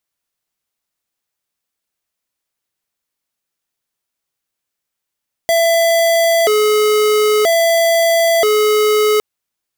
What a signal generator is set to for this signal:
siren hi-lo 425–668 Hz 0.51 per second square −12.5 dBFS 3.71 s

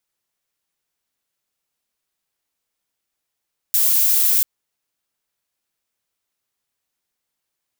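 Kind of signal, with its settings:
noise violet, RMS −16 dBFS 0.69 s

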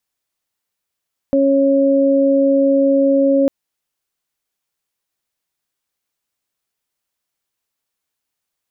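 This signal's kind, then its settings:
steady harmonic partials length 2.15 s, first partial 275 Hz, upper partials 0.5 dB, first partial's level −13.5 dB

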